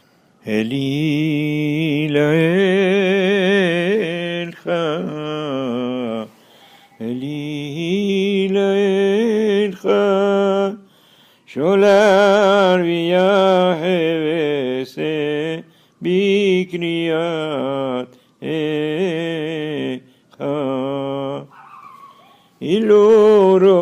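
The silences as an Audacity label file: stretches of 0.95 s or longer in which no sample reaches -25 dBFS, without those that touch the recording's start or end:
21.410000	22.620000	silence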